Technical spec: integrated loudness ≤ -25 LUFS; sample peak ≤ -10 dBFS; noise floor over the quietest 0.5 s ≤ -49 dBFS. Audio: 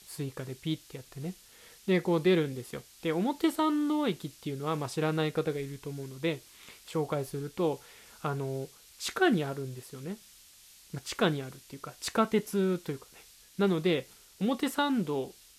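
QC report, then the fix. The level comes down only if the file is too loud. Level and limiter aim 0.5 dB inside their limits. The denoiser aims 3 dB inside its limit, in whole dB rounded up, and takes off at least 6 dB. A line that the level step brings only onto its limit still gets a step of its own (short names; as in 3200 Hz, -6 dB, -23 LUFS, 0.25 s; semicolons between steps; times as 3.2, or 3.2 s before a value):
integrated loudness -31.5 LUFS: OK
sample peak -12.5 dBFS: OK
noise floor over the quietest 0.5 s -56 dBFS: OK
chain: none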